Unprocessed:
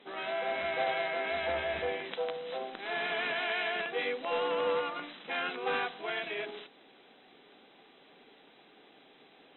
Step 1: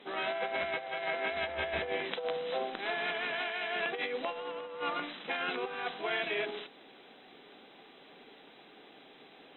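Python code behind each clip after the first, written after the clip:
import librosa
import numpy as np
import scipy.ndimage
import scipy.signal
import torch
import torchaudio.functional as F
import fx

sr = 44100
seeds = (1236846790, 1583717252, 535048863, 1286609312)

y = fx.over_compress(x, sr, threshold_db=-35.0, ratio=-0.5)
y = y * 10.0 ** (1.0 / 20.0)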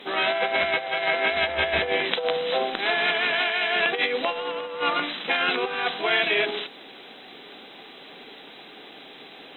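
y = fx.high_shelf(x, sr, hz=2800.0, db=8.0)
y = y * 10.0 ** (9.0 / 20.0)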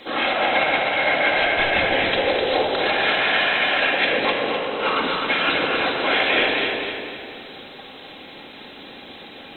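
y = fx.whisperise(x, sr, seeds[0])
y = fx.echo_feedback(y, sr, ms=254, feedback_pct=42, wet_db=-5)
y = fx.room_shoebox(y, sr, seeds[1], volume_m3=3100.0, walls='mixed', distance_m=2.2)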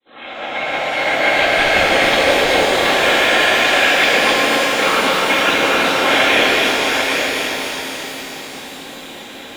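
y = fx.fade_in_head(x, sr, length_s=1.33)
y = y + 10.0 ** (-5.5 / 20.0) * np.pad(y, (int(789 * sr / 1000.0), 0))[:len(y)]
y = fx.rev_shimmer(y, sr, seeds[2], rt60_s=3.9, semitones=12, shimmer_db=-8, drr_db=2.0)
y = y * 10.0 ** (3.0 / 20.0)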